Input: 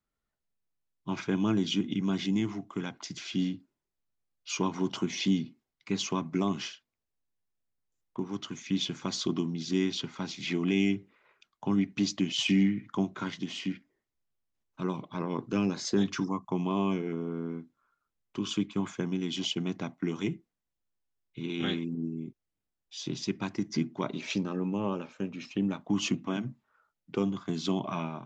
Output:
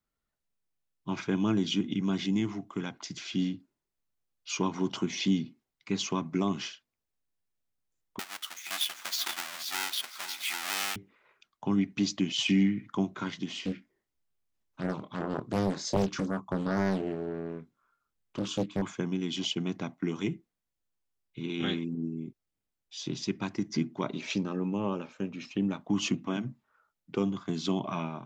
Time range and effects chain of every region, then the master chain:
0:08.19–0:10.96: each half-wave held at its own peak + high-pass filter 1,400 Hz + single-tap delay 474 ms −11.5 dB
0:13.61–0:18.82: dynamic equaliser 2,300 Hz, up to −4 dB, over −48 dBFS, Q 0.99 + double-tracking delay 26 ms −7.5 dB + highs frequency-modulated by the lows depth 0.99 ms
whole clip: no processing

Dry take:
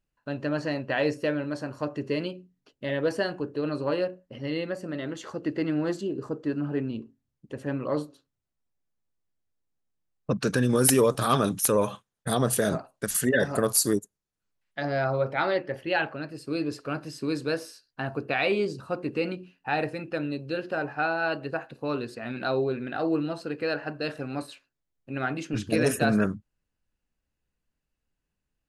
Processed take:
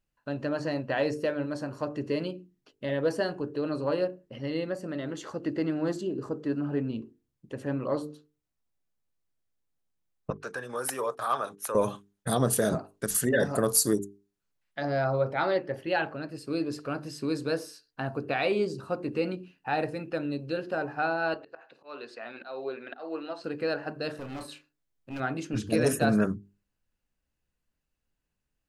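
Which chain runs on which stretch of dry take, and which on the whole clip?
0:10.30–0:11.75: noise gate −33 dBFS, range −18 dB + three-way crossover with the lows and the highs turned down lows −23 dB, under 600 Hz, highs −12 dB, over 2,200 Hz
0:21.34–0:23.44: band-pass filter 520–4,900 Hz + volume swells 247 ms
0:24.11–0:25.20: hard clipping −33.5 dBFS + double-tracking delay 33 ms −8 dB
whole clip: mains-hum notches 50/100/150/200/250/300/350/400/450 Hz; dynamic equaliser 2,400 Hz, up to −5 dB, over −45 dBFS, Q 0.9

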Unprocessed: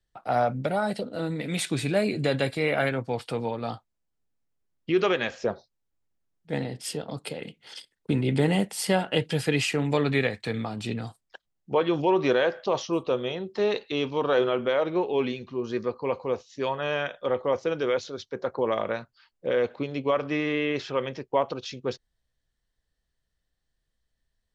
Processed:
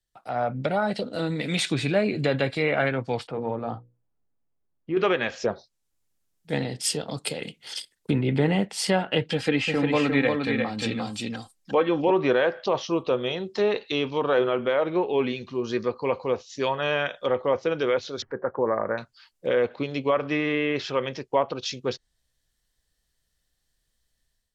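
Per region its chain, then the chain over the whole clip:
0:03.27–0:04.97: low-pass filter 1,100 Hz + mains-hum notches 60/120/180/240/300/360/420/480/540 Hz + transient designer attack −4 dB, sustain +2 dB
0:09.32–0:12.11: comb filter 3.8 ms, depth 47% + single-tap delay 352 ms −4 dB
0:18.22–0:18.98: elliptic low-pass filter 1,800 Hz, stop band 50 dB + parametric band 690 Hz −3 dB 0.22 octaves + upward compression, threshold −36 dBFS
whole clip: treble cut that deepens with the level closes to 2,300 Hz, closed at −21.5 dBFS; high-shelf EQ 3,800 Hz +11.5 dB; automatic gain control gain up to 9.5 dB; level −7 dB

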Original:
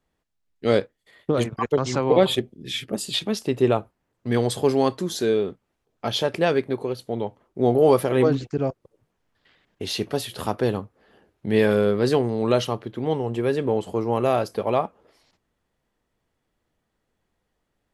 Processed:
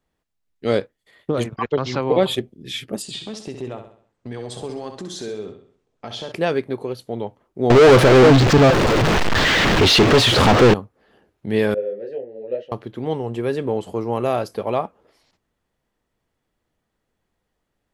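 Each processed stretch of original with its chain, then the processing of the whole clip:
0:01.56–0:02.01: low-pass filter 4,400 Hz 24 dB per octave + high-shelf EQ 2,600 Hz +8 dB
0:03.02–0:06.32: Butterworth low-pass 9,400 Hz + downward compressor 3 to 1, threshold −30 dBFS + repeating echo 65 ms, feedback 44%, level −8 dB
0:07.70–0:10.74: converter with a step at zero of −21 dBFS + low-pass filter 4,400 Hz + leveller curve on the samples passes 3
0:11.74–0:12.72: formant filter e + tilt shelving filter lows +6 dB, about 1,100 Hz + micro pitch shift up and down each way 35 cents
whole clip: no processing

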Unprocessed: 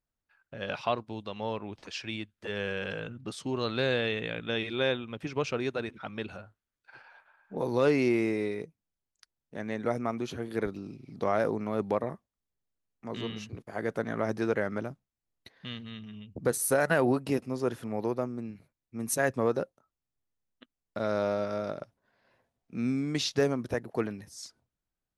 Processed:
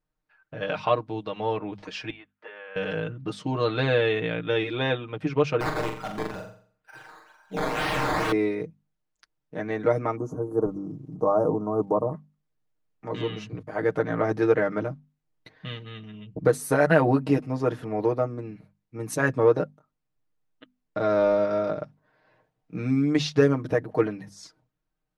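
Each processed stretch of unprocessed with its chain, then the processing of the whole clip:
0:02.10–0:02.76: downward compressor, threshold −37 dBFS + band-pass filter 750–2,200 Hz
0:05.60–0:08.32: sample-and-hold swept by an LFO 11× 2.1 Hz + wrap-around overflow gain 28 dB + flutter between parallel walls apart 7.4 metres, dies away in 0.49 s
0:10.15–0:12.12: elliptic band-stop filter 1,100–6,600 Hz, stop band 50 dB + surface crackle 95 per second −62 dBFS
whole clip: low-pass filter 2,000 Hz 6 dB per octave; mains-hum notches 50/100/150/200/250 Hz; comb filter 6.5 ms, depth 84%; level +5 dB

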